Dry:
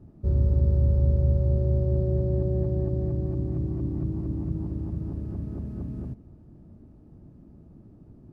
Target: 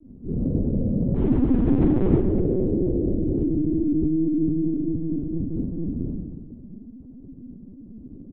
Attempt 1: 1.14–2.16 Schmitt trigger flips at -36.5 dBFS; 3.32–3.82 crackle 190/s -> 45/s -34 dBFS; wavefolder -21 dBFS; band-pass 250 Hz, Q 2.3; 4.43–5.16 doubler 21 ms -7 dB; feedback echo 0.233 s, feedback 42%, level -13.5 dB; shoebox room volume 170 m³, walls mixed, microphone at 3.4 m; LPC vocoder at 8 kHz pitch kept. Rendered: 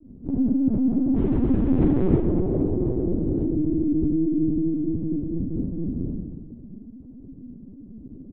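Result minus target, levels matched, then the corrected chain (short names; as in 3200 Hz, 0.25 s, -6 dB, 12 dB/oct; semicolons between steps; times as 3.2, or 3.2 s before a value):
wavefolder: distortion +30 dB
1.14–2.16 Schmitt trigger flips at -36.5 dBFS; 3.32–3.82 crackle 190/s -> 45/s -34 dBFS; wavefolder -13 dBFS; band-pass 250 Hz, Q 2.3; 4.43–5.16 doubler 21 ms -7 dB; feedback echo 0.233 s, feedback 42%, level -13.5 dB; shoebox room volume 170 m³, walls mixed, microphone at 3.4 m; LPC vocoder at 8 kHz pitch kept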